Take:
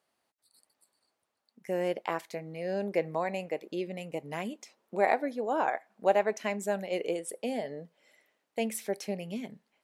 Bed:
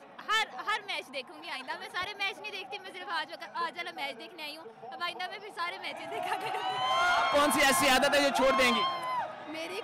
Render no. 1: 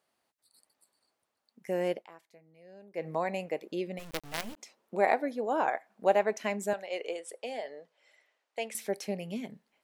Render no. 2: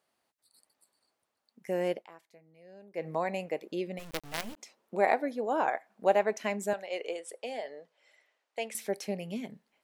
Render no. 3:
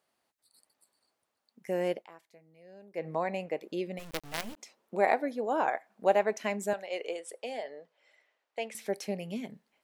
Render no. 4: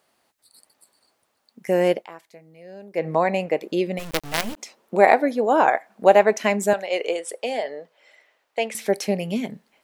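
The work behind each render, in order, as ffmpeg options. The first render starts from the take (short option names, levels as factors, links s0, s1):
-filter_complex "[0:a]asplit=3[s0][s1][s2];[s0]afade=t=out:st=3.98:d=0.02[s3];[s1]acrusher=bits=5:dc=4:mix=0:aa=0.000001,afade=t=in:st=3.98:d=0.02,afade=t=out:st=4.56:d=0.02[s4];[s2]afade=t=in:st=4.56:d=0.02[s5];[s3][s4][s5]amix=inputs=3:normalize=0,asettb=1/sr,asplit=3[s6][s7][s8];[s6]atrim=end=6.734[s9];[s7]atrim=start=6.73:end=8.75,asetpts=PTS-STARTPTS,afade=t=in:d=0.004:c=qsin,afade=t=out:st=2.016:d=0.004:c=qsin,highpass=550,lowpass=7400[s10];[s8]atrim=start=8.746[s11];[s9][s10]acrossfade=d=0.004:c1=hsin:c2=qsin[s12];[s12][s11]acrossfade=d=0.004:c1=qsin:c2=hsin,asplit=3[s13][s14][s15];[s13]atrim=end=2.08,asetpts=PTS-STARTPTS,afade=t=out:st=1.92:d=0.16:silence=0.1[s16];[s14]atrim=start=2.08:end=2.93,asetpts=PTS-STARTPTS,volume=0.1[s17];[s15]atrim=start=2.93,asetpts=PTS-STARTPTS,afade=t=in:d=0.16:silence=0.1[s18];[s16][s17][s18]concat=n=3:v=0:a=1"
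-af anull
-filter_complex "[0:a]asettb=1/sr,asplit=3[s0][s1][s2];[s0]atrim=end=2.994[s3];[s1]atrim=start=2.99:end=3.61,asetpts=PTS-STARTPTS,afade=t=in:d=0.004:c=qsin,afade=t=out:st=0.616:d=0.004:c=qsin,highshelf=f=6800:g=-9.5[s4];[s2]atrim=start=3.606[s5];[s3][s4]acrossfade=d=0.004:c1=hsin:c2=qsin[s6];[s6][s5]acrossfade=d=0.004:c1=qsin:c2=hsin,asettb=1/sr,asplit=3[s7][s8][s9];[s7]atrim=end=7.634[s10];[s8]atrim=start=7.63:end=8.86,asetpts=PTS-STARTPTS,afade=t=in:d=0.004:c=qsin,afade=t=out:st=1.226:d=0.004:c=qsin,highshelf=f=6400:g=-8.5[s11];[s9]atrim=start=8.856[s12];[s10][s11]acrossfade=d=0.004:c1=hsin:c2=qsin[s13];[s13][s12]acrossfade=d=0.004:c1=qsin:c2=hsin"
-af "volume=3.76,alimiter=limit=0.794:level=0:latency=1"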